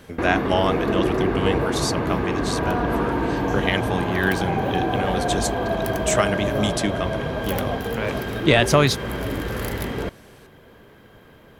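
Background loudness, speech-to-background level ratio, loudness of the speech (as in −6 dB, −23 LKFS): −24.5 LKFS, −0.5 dB, −25.0 LKFS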